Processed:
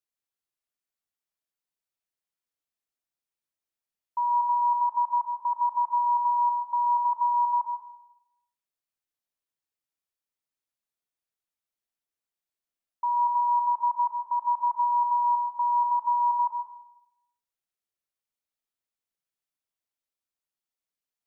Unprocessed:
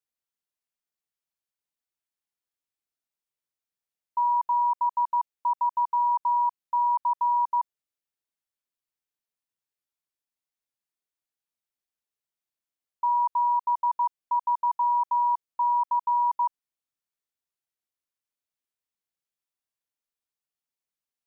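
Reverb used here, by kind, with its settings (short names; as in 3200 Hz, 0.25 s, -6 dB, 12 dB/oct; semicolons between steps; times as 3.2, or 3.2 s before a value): digital reverb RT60 0.86 s, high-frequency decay 0.4×, pre-delay 70 ms, DRR 4.5 dB; gain -2.5 dB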